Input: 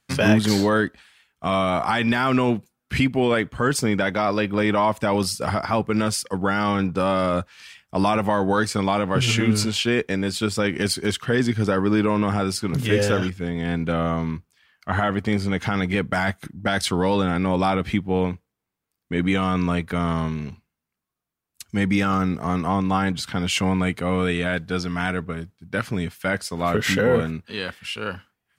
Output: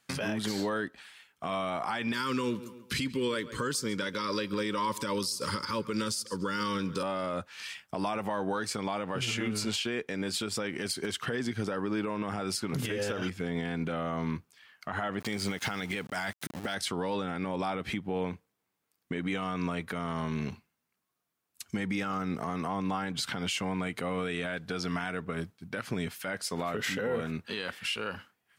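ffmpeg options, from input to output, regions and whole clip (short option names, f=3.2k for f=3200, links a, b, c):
-filter_complex "[0:a]asettb=1/sr,asplit=3[a][b][c];[a]atrim=end=2.134[d];[b]atrim=start=2.13:end=7.03,asetpts=PTS-STARTPTS,afade=t=in:d=0.004:c=qsin,afade=t=out:st=4.896:d=0.004:c=qsin,asuperstop=centerf=720:order=12:qfactor=2.3,highshelf=f=3.2k:t=q:w=1.5:g=7.5,asplit=2[e][f];[f]adelay=138,lowpass=f=4.5k:p=1,volume=-20.5dB,asplit=2[g][h];[h]adelay=138,lowpass=f=4.5k:p=1,volume=0.34,asplit=2[i][j];[j]adelay=138,lowpass=f=4.5k:p=1,volume=0.34[k];[e][g][i][k]amix=inputs=4:normalize=0,atrim=end_sample=216090[l];[c]atrim=start=7.026[m];[d][l]acrossfade=d=0.004:c1=hsin:c2=qsin[n];[n][m]acrossfade=d=0.004:c1=qsin:c2=hsin,asettb=1/sr,asplit=3[o][p][q];[o]atrim=end=15.204[r];[p]atrim=start=15.2:end=16.75,asetpts=PTS-STARTPTS,afade=t=in:d=0.004:c=qsin,afade=t=out:st=1.546:d=0.004:c=qsin,highshelf=f=2.7k:g=9.5,aeval=exprs='val(0)*gte(abs(val(0)),0.015)':c=same[s];[q]atrim=start=16.746[t];[r][s]acrossfade=d=0.004:c1=hsin:c2=qsin[u];[u][t]acrossfade=d=0.004:c1=qsin:c2=hsin,highpass=f=220:p=1,acompressor=threshold=-29dB:ratio=6,alimiter=level_in=0.5dB:limit=-24dB:level=0:latency=1:release=97,volume=-0.5dB,volume=2.5dB"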